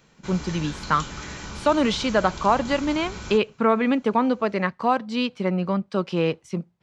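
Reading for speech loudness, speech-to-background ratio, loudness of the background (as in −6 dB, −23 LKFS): −23.5 LKFS, 13.0 dB, −36.5 LKFS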